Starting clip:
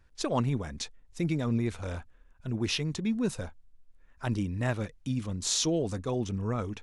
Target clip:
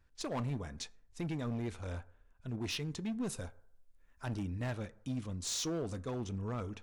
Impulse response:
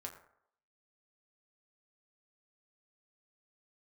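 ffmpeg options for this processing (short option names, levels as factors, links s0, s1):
-filter_complex "[0:a]asettb=1/sr,asplit=3[s0][s1][s2];[s0]atrim=end=3.274[s3];[s1]atrim=start=3.27:end=4.25,asetpts=PTS-STARTPTS,afade=t=in:d=0.004:c=qsin,afade=t=out:st=0.976:d=0.004:c=qsin,highshelf=f=7400:g=10[s4];[s2]atrim=start=4.246[s5];[s3][s4]acrossfade=d=0.004:c1=hsin:c2=qsin[s6];[s6][s5]acrossfade=d=0.004:c1=qsin:c2=hsin,volume=20,asoftclip=hard,volume=0.0501,asplit=2[s7][s8];[1:a]atrim=start_sample=2205[s9];[s8][s9]afir=irnorm=-1:irlink=0,volume=0.473[s10];[s7][s10]amix=inputs=2:normalize=0,volume=0.376"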